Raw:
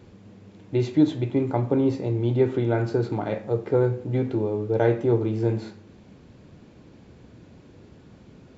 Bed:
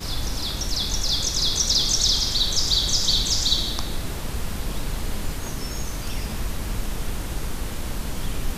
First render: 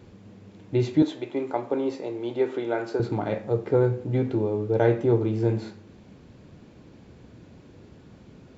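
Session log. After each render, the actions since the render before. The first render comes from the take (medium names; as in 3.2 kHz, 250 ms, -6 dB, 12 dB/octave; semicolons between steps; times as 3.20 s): 1.02–3.00 s: high-pass 390 Hz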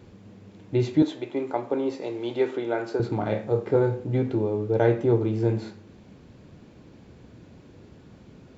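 2.01–2.51 s: peaking EQ 4 kHz +5 dB 2.8 oct; 3.17–4.00 s: flutter echo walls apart 4.7 m, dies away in 0.22 s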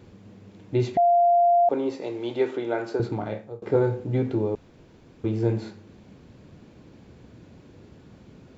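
0.97–1.69 s: bleep 695 Hz -15 dBFS; 3.03–3.62 s: fade out, to -24 dB; 4.55–5.24 s: room tone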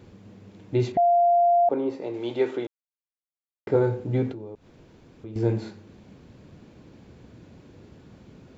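0.92–2.14 s: treble shelf 2.9 kHz -11 dB; 2.67–3.67 s: mute; 4.32–5.36 s: compression 2:1, threshold -46 dBFS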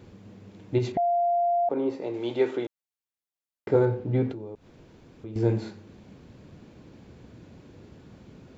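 0.78–1.84 s: compression, threshold -22 dBFS; 3.85–4.30 s: distance through air 140 m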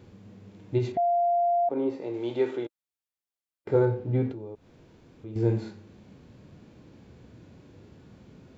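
harmonic-percussive split percussive -7 dB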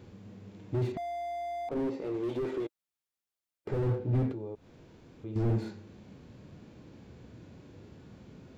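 slew-rate limiter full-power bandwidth 12 Hz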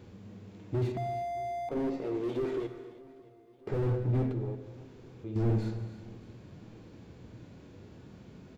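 feedback delay 621 ms, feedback 58%, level -22 dB; gated-style reverb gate 370 ms flat, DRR 9 dB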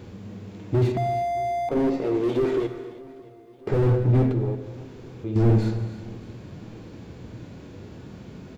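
trim +9.5 dB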